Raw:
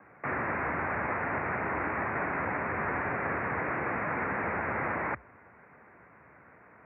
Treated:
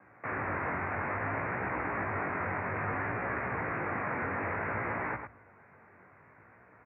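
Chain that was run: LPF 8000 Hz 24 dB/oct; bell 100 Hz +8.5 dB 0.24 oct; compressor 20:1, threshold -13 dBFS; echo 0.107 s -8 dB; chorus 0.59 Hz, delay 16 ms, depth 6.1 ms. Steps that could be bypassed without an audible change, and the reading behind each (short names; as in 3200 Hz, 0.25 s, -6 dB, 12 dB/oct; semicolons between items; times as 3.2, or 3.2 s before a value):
LPF 8000 Hz: input band ends at 2700 Hz; compressor, threshold -13 dBFS: input peak -19.5 dBFS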